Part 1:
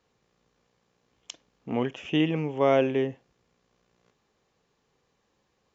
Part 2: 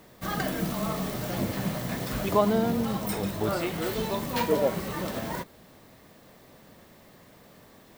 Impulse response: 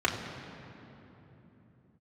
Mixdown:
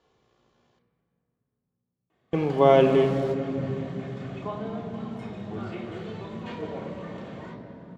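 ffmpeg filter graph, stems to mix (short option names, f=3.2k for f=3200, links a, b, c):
-filter_complex "[0:a]volume=1dB,asplit=3[a][b][c];[a]atrim=end=0.79,asetpts=PTS-STARTPTS,afade=t=out:st=0.786:d=0.004:c=hsin[d];[b]atrim=start=0.79:end=2.33,asetpts=PTS-STARTPTS,volume=0[e];[c]atrim=start=2.33,asetpts=PTS-STARTPTS,afade=t=in:d=0.004:c=hsin[f];[d][e][f]concat=n=3:v=0:a=1,asplit=3[g][h][i];[h]volume=-12dB[j];[1:a]dynaudnorm=f=230:g=5:m=8dB,adelay=2100,volume=-16dB,asplit=2[k][l];[l]volume=-12.5dB[m];[i]apad=whole_len=444496[n];[k][n]sidechaingate=range=-33dB:threshold=-56dB:ratio=16:detection=peak[o];[2:a]atrim=start_sample=2205[p];[j][m]amix=inputs=2:normalize=0[q];[q][p]afir=irnorm=-1:irlink=0[r];[g][o][r]amix=inputs=3:normalize=0,lowpass=5.3k"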